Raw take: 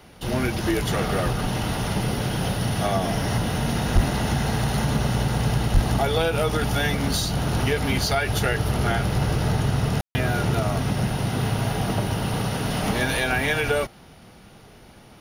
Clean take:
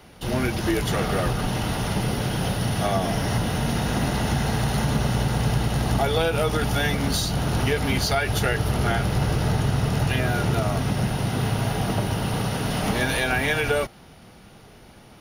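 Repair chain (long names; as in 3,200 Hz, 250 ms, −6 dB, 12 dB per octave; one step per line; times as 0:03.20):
clipped peaks rebuilt −9.5 dBFS
0:03.94–0:04.06: high-pass filter 140 Hz 24 dB per octave
0:05.73–0:05.85: high-pass filter 140 Hz 24 dB per octave
ambience match 0:10.01–0:10.15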